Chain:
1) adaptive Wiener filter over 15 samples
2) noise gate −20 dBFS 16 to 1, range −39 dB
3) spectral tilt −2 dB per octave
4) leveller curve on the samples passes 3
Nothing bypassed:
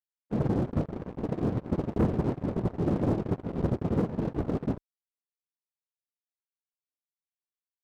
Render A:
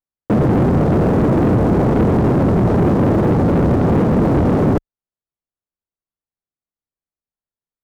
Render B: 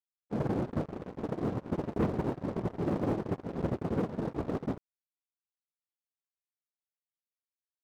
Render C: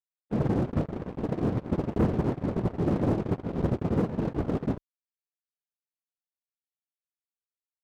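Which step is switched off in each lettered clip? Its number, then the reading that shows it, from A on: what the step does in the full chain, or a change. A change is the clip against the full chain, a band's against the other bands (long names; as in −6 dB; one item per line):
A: 2, change in momentary loudness spread −6 LU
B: 3, 125 Hz band −4.0 dB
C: 1, 2 kHz band +2.0 dB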